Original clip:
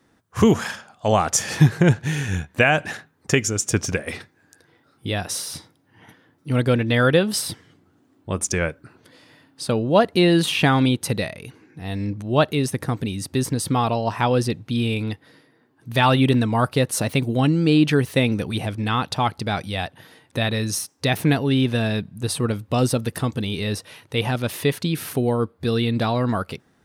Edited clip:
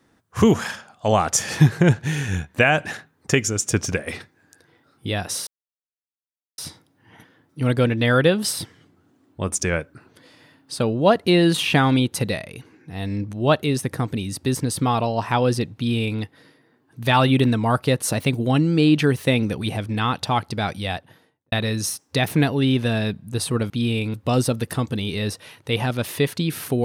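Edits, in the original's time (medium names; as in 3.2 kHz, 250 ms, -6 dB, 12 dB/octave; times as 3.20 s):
5.47 s: insert silence 1.11 s
14.65–15.09 s: copy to 22.59 s
19.76–20.41 s: studio fade out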